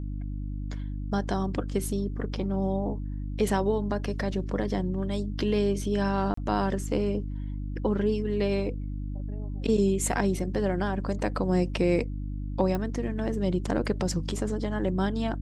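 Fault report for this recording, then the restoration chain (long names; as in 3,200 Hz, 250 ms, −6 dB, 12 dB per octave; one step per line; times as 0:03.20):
mains hum 50 Hz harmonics 6 −33 dBFS
0:06.34–0:06.37: drop-out 34 ms
0:12.75: click −18 dBFS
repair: click removal
hum removal 50 Hz, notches 6
repair the gap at 0:06.34, 34 ms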